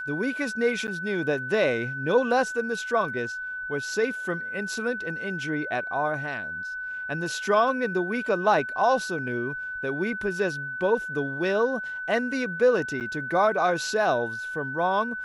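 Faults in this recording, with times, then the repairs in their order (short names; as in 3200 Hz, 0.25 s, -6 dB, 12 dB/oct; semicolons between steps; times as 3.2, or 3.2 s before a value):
tone 1500 Hz -31 dBFS
0.87–0.88 gap 9.3 ms
13–13.01 gap 8.4 ms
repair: notch 1500 Hz, Q 30; interpolate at 0.87, 9.3 ms; interpolate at 13, 8.4 ms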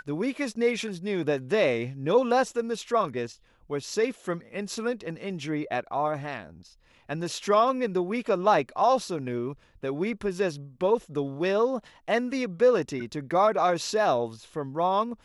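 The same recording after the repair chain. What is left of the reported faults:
none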